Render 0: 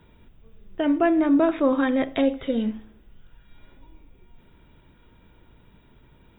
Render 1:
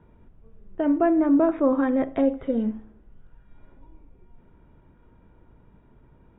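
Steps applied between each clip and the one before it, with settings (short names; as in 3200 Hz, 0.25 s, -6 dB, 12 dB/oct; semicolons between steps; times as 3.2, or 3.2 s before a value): LPF 1300 Hz 12 dB/oct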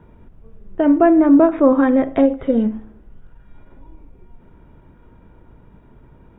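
ending taper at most 220 dB/s; gain +8 dB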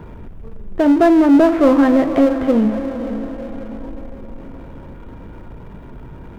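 diffused feedback echo 0.518 s, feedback 42%, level -14 dB; power-law curve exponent 0.7; gain -1.5 dB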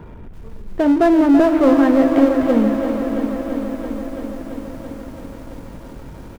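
echo 0.389 s -13.5 dB; lo-fi delay 0.335 s, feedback 80%, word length 7-bit, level -9.5 dB; gain -2 dB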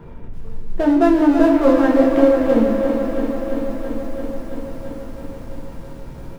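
shoebox room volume 66 m³, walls mixed, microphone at 0.76 m; gain -4 dB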